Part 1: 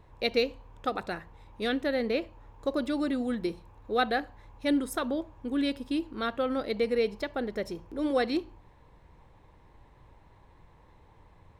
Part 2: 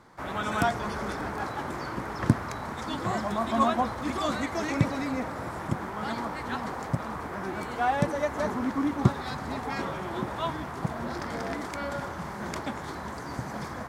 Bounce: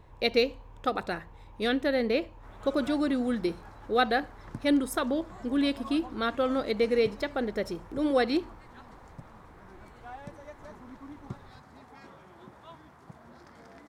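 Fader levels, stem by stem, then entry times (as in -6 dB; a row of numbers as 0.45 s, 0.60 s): +2.0 dB, -18.5 dB; 0.00 s, 2.25 s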